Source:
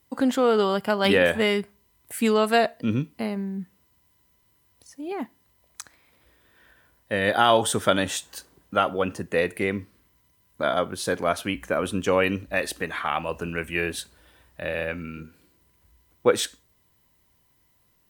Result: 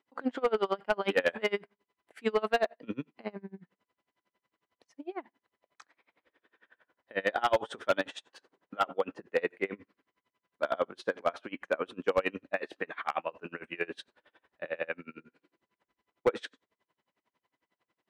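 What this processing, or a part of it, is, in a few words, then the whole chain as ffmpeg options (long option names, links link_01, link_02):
helicopter radio: -af "highpass=320,lowpass=2700,aeval=exprs='val(0)*pow(10,-29*(0.5-0.5*cos(2*PI*11*n/s))/20)':channel_layout=same,asoftclip=type=hard:threshold=-17.5dB"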